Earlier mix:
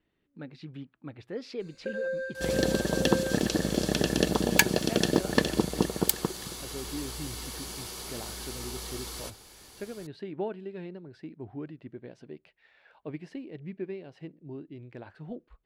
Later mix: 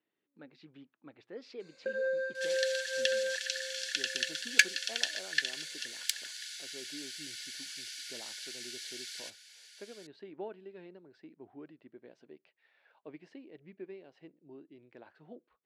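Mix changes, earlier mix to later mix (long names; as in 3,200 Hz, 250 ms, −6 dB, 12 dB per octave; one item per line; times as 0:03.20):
speech −7.5 dB
second sound: add linear-phase brick-wall high-pass 1,400 Hz
master: add band-pass filter 280–6,800 Hz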